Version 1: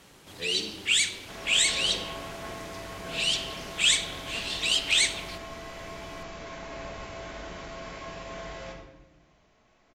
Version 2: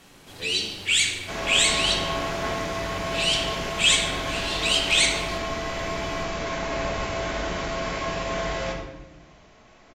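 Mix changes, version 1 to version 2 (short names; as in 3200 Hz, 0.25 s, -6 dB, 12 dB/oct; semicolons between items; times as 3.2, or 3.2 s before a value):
first sound: send on; second sound +11.5 dB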